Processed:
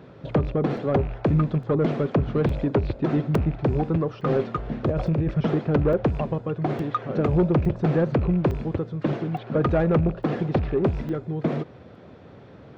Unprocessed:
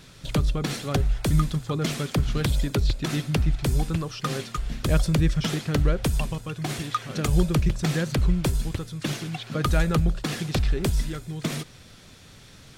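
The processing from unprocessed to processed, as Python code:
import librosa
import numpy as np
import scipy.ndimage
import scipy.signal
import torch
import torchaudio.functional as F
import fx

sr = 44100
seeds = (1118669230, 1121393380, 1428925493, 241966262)

y = fx.rattle_buzz(x, sr, strikes_db=-21.0, level_db=-27.0)
y = scipy.signal.sosfilt(scipy.signal.butter(4, 62.0, 'highpass', fs=sr, output='sos'), y)
y = fx.peak_eq(y, sr, hz=520.0, db=13.0, octaves=2.6)
y = fx.over_compress(y, sr, threshold_db=-19.0, ratio=-1.0, at=(4.24, 5.31))
y = fx.spacing_loss(y, sr, db_at_10k=40)
y = 10.0 ** (-13.0 / 20.0) * np.tanh(y / 10.0 ** (-13.0 / 20.0))
y = fx.buffer_crackle(y, sr, first_s=0.77, period_s=0.86, block=128, kind='zero')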